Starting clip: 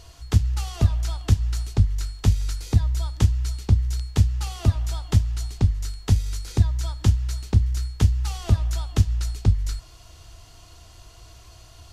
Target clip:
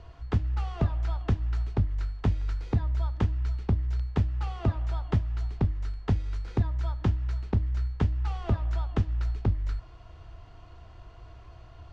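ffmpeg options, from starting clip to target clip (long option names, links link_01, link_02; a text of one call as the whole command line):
ffmpeg -i in.wav -filter_complex "[0:a]acrossover=split=280[link_01][link_02];[link_01]alimiter=limit=-16.5dB:level=0:latency=1:release=354[link_03];[link_03][link_02]amix=inputs=2:normalize=0,lowpass=1800,bandreject=frequency=312.8:width_type=h:width=4,bandreject=frequency=625.6:width_type=h:width=4" out.wav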